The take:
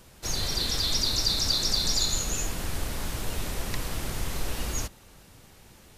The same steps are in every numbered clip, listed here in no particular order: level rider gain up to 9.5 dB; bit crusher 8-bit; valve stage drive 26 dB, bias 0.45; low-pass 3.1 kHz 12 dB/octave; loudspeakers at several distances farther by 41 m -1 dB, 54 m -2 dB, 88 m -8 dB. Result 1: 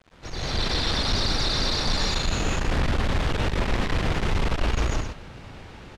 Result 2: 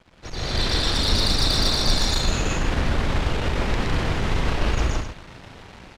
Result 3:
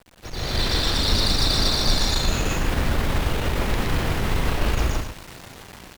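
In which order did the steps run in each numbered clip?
loudspeakers at several distances > valve stage > level rider > bit crusher > low-pass; bit crusher > low-pass > valve stage > loudspeakers at several distances > level rider; low-pass > bit crusher > valve stage > loudspeakers at several distances > level rider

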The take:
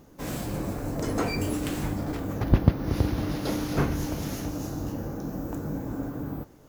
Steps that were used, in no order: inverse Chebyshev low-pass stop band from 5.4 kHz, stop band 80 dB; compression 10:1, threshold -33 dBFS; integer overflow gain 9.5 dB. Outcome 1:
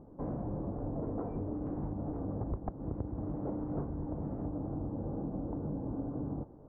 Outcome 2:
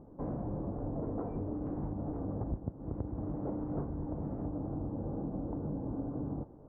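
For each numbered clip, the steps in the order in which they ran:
integer overflow > inverse Chebyshev low-pass > compression; inverse Chebyshev low-pass > compression > integer overflow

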